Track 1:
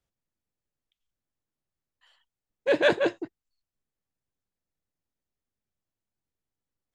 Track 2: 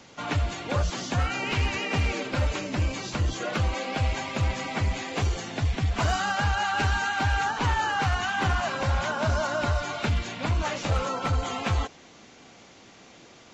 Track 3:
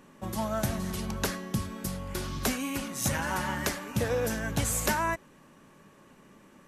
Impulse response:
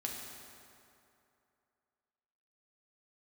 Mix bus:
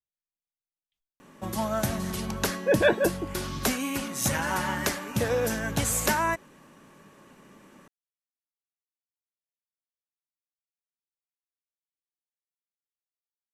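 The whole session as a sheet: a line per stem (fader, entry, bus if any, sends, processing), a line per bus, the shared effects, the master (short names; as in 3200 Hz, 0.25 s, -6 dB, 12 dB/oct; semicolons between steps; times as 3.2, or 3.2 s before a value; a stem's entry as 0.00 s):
+0.5 dB, 0.00 s, no send, gate with hold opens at -60 dBFS; spectral gate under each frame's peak -25 dB strong
off
+3.0 dB, 1.20 s, no send, low shelf 95 Hz -6 dB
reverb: off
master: dry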